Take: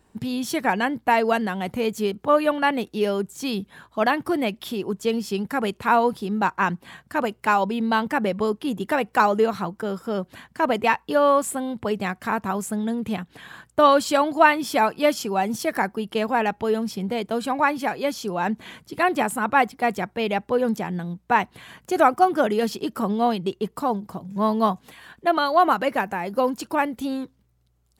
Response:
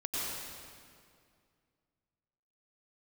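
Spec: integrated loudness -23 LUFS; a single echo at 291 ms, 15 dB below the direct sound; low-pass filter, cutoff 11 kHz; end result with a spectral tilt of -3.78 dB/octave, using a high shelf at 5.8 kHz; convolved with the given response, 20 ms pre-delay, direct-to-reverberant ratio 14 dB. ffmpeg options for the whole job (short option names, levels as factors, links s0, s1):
-filter_complex "[0:a]lowpass=11000,highshelf=f=5800:g=-9,aecho=1:1:291:0.178,asplit=2[s0][s1];[1:a]atrim=start_sample=2205,adelay=20[s2];[s1][s2]afir=irnorm=-1:irlink=0,volume=0.106[s3];[s0][s3]amix=inputs=2:normalize=0"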